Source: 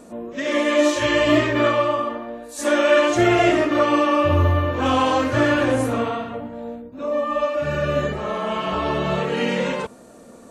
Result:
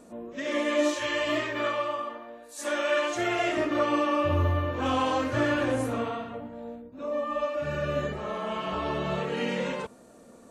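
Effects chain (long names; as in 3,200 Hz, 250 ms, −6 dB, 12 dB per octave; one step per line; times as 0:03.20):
0:00.94–0:03.57: low-shelf EQ 360 Hz −11.5 dB
level −7.5 dB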